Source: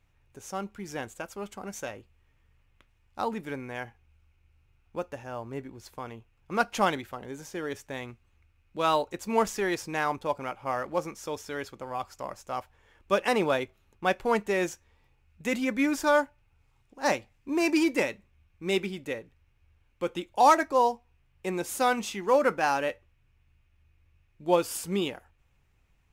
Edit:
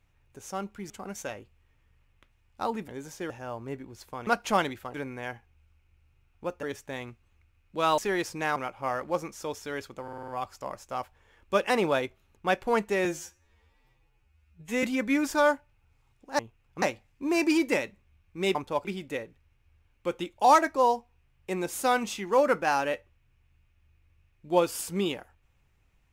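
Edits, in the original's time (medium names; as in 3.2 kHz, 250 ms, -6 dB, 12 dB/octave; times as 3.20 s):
0.90–1.48 s: delete
3.46–5.15 s: swap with 7.22–7.64 s
6.12–6.55 s: move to 17.08 s
8.99–9.51 s: delete
10.09–10.39 s: move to 18.81 s
11.86 s: stutter 0.05 s, 6 plays
14.63–15.52 s: stretch 2×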